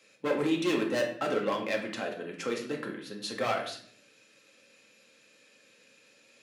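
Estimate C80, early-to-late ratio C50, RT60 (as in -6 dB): 10.5 dB, 7.5 dB, 0.60 s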